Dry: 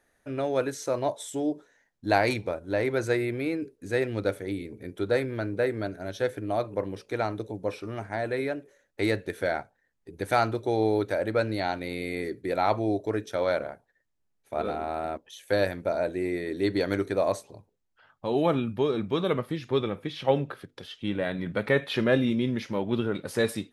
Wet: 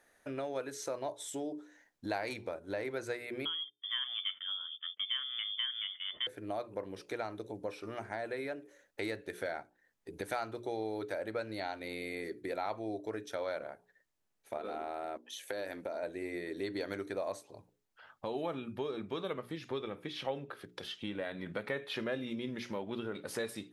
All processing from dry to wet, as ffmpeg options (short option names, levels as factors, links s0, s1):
-filter_complex "[0:a]asettb=1/sr,asplit=3[s0][s1][s2];[s0]atrim=end=3.454[s3];[s1]atrim=start=3.45:end=6.27,asetpts=PTS-STARTPTS,afade=t=in:d=0.004:c=qsin,afade=t=out:st=2.816:d=0.004:c=qsin,agate=range=0.0708:threshold=0.00562:ratio=16:release=100:detection=peak,lowpass=f=3100:t=q:w=0.5098,lowpass=f=3100:t=q:w=0.6013,lowpass=f=3100:t=q:w=0.9,lowpass=f=3100:t=q:w=2.563,afreqshift=-3600[s4];[s2]atrim=start=6.266[s5];[s3][s4]acrossfade=d=0.004:c1=hsin:c2=qsin[s6];[s6][s5]acrossfade=d=0.004:c1=qsin:c2=hsin,asettb=1/sr,asplit=3[s7][s8][s9];[s7]atrim=end=14.574[s10];[s8]atrim=start=14.57:end=16.03,asetpts=PTS-STARTPTS,afade=t=in:d=0.004:c=qsin,afade=t=out:st=1.456:d=0.004:c=qsin,lowshelf=f=190:t=q:w=1.5:g=-6.5,acompressor=threshold=0.0447:ratio=6:attack=3.2:release=140:knee=1:detection=peak[s11];[s9]atrim=start=16.026[s12];[s10][s11]acrossfade=d=0.004:c1=hsin:c2=qsin[s13];[s13][s12]acrossfade=d=0.004:c1=qsin:c2=hsin,lowshelf=f=190:g=-10,bandreject=f=60:t=h:w=6,bandreject=f=120:t=h:w=6,bandreject=f=180:t=h:w=6,bandreject=f=240:t=h:w=6,bandreject=f=300:t=h:w=6,bandreject=f=360:t=h:w=6,bandreject=f=420:t=h:w=6,acompressor=threshold=0.00708:ratio=2.5,volume=1.33"